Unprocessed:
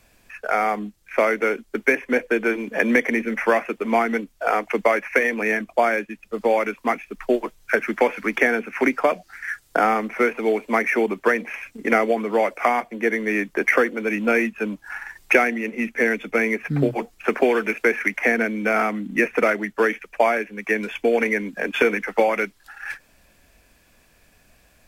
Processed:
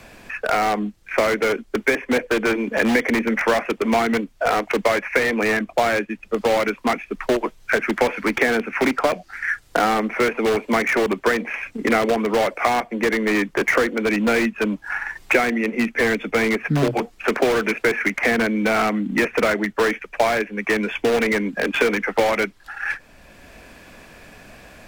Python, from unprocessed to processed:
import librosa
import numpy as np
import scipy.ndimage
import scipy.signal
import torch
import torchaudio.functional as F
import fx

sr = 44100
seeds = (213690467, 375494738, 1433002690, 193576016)

p1 = (np.mod(10.0 ** (16.5 / 20.0) * x + 1.0, 2.0) - 1.0) / 10.0 ** (16.5 / 20.0)
p2 = x + (p1 * librosa.db_to_amplitude(-4.0))
p3 = fx.lowpass(p2, sr, hz=3400.0, slope=6)
y = fx.band_squash(p3, sr, depth_pct=40)